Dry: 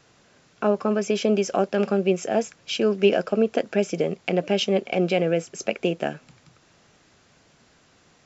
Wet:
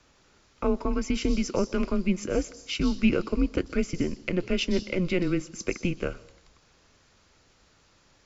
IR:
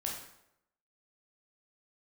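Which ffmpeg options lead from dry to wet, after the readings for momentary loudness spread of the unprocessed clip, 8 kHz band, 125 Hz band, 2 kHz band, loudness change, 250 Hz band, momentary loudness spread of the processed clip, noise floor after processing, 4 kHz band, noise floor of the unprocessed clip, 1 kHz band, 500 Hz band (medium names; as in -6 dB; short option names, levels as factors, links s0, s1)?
6 LU, no reading, -1.5 dB, -3.0 dB, -4.5 dB, -1.0 dB, 6 LU, -62 dBFS, -4.5 dB, -59 dBFS, -9.0 dB, -8.5 dB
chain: -filter_complex "[0:a]afreqshift=-180,asplit=2[s0][s1];[s1]highshelf=f=3100:t=q:w=3:g=12.5[s2];[1:a]atrim=start_sample=2205,adelay=124[s3];[s2][s3]afir=irnorm=-1:irlink=0,volume=0.0708[s4];[s0][s4]amix=inputs=2:normalize=0,volume=0.668"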